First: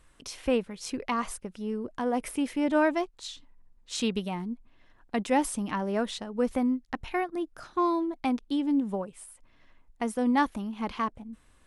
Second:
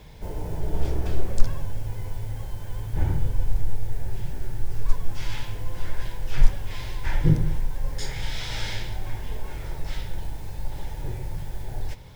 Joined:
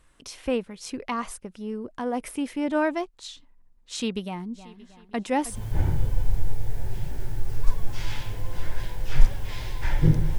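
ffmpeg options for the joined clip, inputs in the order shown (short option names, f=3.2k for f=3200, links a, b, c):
-filter_complex "[0:a]asplit=3[a][b][c];[a]afade=t=out:st=4.53:d=0.02[d];[b]aecho=1:1:315|630|945|1260:0.2|0.0878|0.0386|0.017,afade=t=in:st=4.53:d=0.02,afade=t=out:st=5.63:d=0.02[e];[c]afade=t=in:st=5.63:d=0.02[f];[d][e][f]amix=inputs=3:normalize=0,apad=whole_dur=10.38,atrim=end=10.38,atrim=end=5.63,asetpts=PTS-STARTPTS[g];[1:a]atrim=start=2.69:end=7.6,asetpts=PTS-STARTPTS[h];[g][h]acrossfade=d=0.16:c1=tri:c2=tri"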